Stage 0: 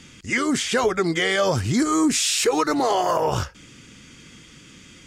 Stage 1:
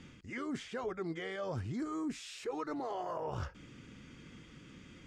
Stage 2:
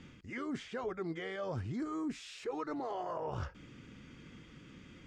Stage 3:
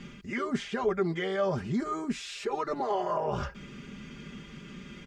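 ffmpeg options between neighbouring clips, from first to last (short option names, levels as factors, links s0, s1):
-af "areverse,acompressor=threshold=0.0282:ratio=5,areverse,lowpass=f=1400:p=1,volume=0.562"
-af "highshelf=f=8600:g=-10.5"
-af "aecho=1:1:5:0.81,volume=2.24"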